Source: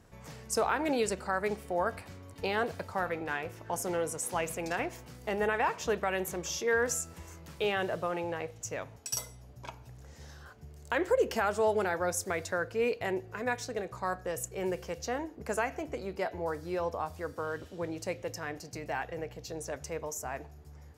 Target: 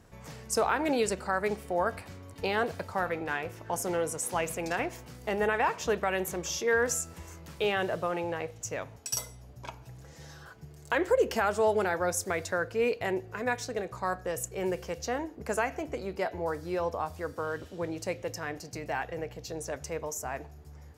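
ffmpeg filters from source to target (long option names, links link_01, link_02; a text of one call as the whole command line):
ffmpeg -i in.wav -filter_complex "[0:a]asettb=1/sr,asplit=3[link_01][link_02][link_03];[link_01]atrim=end=9.814[link_04];[link_02]atrim=start=9.81:end=10.95,asetpts=PTS-STARTPTS,afade=type=in:duration=0.004:curve=qsin,afade=type=out:start_time=1.136:duration=0.004:curve=qsin,aecho=1:1:6.1:0.57,atrim=end_sample=50274[link_05];[link_03]atrim=start=10.946[link_06];[link_04][link_05]acrossfade=duration=0.004:curve1=hsin:curve2=qsin[link_07];[link_07][link_06]acrossfade=duration=0.004:curve1=qsin:curve2=hsin,volume=2dB" out.wav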